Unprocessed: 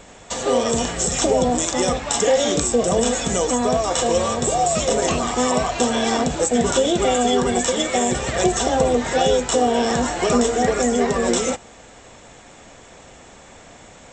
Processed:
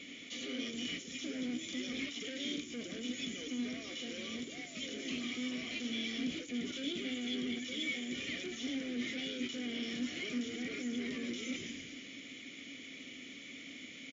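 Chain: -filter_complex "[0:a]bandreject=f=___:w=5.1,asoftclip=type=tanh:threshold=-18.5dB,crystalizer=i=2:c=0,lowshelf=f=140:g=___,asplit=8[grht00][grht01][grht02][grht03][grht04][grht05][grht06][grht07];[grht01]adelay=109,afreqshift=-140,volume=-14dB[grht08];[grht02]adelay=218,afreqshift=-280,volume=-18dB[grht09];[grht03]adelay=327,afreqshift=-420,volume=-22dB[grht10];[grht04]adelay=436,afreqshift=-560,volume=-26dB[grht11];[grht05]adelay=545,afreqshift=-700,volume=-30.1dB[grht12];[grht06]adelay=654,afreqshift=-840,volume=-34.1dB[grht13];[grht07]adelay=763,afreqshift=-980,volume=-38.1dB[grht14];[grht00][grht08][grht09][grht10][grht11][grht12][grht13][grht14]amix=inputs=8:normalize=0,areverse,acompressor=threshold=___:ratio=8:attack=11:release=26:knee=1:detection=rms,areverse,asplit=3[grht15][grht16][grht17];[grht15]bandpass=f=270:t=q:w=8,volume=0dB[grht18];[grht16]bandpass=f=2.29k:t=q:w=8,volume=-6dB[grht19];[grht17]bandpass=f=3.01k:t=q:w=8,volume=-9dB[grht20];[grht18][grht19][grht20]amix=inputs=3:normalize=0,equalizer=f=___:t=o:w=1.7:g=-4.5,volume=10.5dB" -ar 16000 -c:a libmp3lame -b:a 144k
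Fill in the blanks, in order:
1.6k, -6.5, -32dB, 300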